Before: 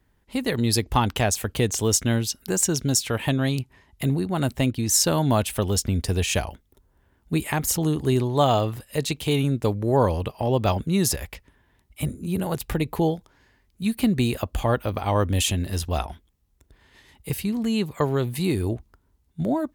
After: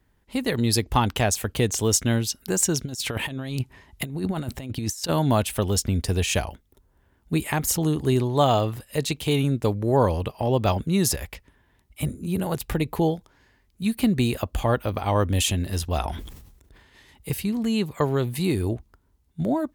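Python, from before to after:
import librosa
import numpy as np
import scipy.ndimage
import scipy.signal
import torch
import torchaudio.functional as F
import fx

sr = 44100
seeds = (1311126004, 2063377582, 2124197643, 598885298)

y = fx.over_compress(x, sr, threshold_db=-27.0, ratio=-0.5, at=(2.84, 5.08), fade=0.02)
y = fx.sustainer(y, sr, db_per_s=52.0, at=(16.03, 17.3), fade=0.02)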